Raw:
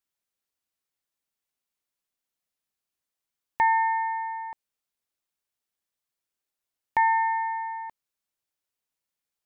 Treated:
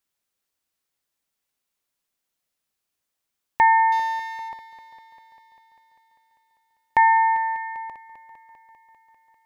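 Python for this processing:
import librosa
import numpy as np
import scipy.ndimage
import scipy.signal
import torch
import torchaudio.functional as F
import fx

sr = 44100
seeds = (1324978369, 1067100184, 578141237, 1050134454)

y = fx.median_filter(x, sr, points=15, at=(3.92, 4.49))
y = fx.echo_heads(y, sr, ms=198, heads='first and second', feedback_pct=65, wet_db=-18.5)
y = F.gain(torch.from_numpy(y), 5.5).numpy()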